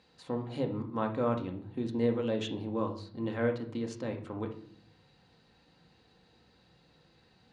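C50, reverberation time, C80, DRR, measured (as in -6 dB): 10.0 dB, 0.55 s, 15.0 dB, 2.5 dB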